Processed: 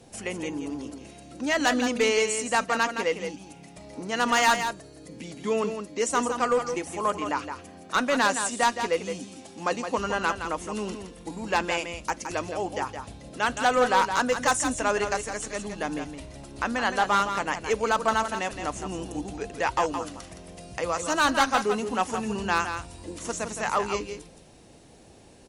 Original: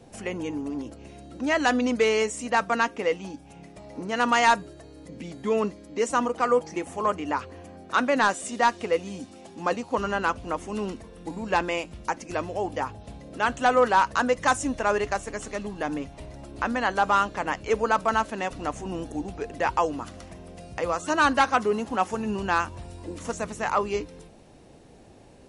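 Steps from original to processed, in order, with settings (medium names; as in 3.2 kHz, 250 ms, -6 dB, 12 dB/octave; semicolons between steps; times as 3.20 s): treble shelf 3 kHz +8.5 dB; one-sided clip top -16.5 dBFS; delay 167 ms -8 dB; trim -2 dB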